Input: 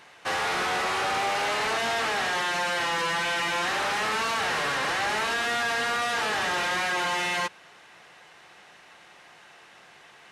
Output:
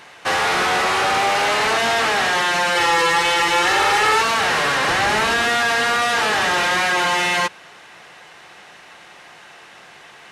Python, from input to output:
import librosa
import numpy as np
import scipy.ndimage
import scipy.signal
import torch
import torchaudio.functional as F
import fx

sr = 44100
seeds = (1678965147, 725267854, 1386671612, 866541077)

y = fx.comb(x, sr, ms=2.3, depth=0.75, at=(2.75, 4.22))
y = fx.low_shelf(y, sr, hz=220.0, db=7.5, at=(4.88, 5.49))
y = y * 10.0 ** (8.5 / 20.0)